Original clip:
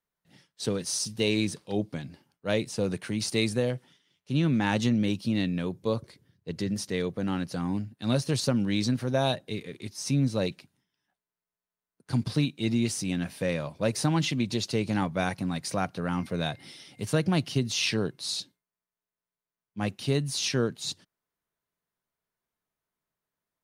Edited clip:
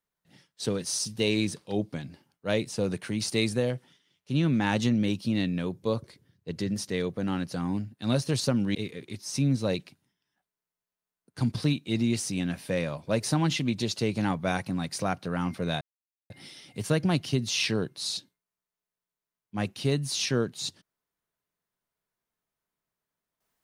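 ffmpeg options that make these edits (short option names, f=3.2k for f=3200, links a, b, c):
-filter_complex "[0:a]asplit=3[a][b][c];[a]atrim=end=8.752[d];[b]atrim=start=9.468:end=16.53,asetpts=PTS-STARTPTS,afade=t=out:st=7.058:d=0.004:c=hsin,apad=pad_dur=0.49[e];[c]atrim=start=16.53,asetpts=PTS-STARTPTS,afade=t=in:d=0.004:c=hsin[f];[e][f]concat=n=2:v=0:a=1[g];[d][g]acrossfade=d=0.004:c1=hsin:c2=hsin"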